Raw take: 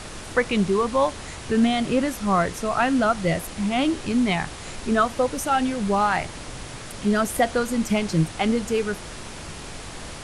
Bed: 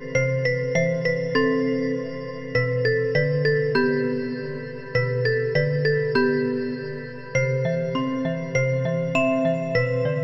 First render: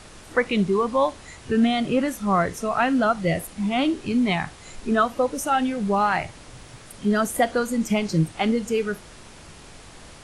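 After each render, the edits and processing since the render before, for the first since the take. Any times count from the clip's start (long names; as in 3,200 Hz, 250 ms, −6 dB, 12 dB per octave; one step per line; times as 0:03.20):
noise reduction from a noise print 8 dB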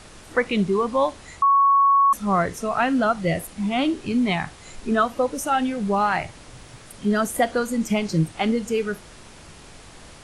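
0:01.42–0:02.13: beep over 1,110 Hz −13 dBFS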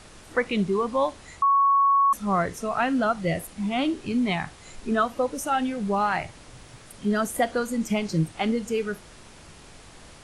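level −3 dB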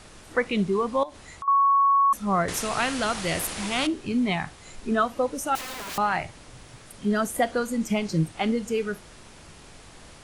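0:01.03–0:01.48: downward compressor 5 to 1, threshold −35 dBFS
0:02.48–0:03.87: every bin compressed towards the loudest bin 2 to 1
0:05.55–0:05.98: wrap-around overflow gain 30.5 dB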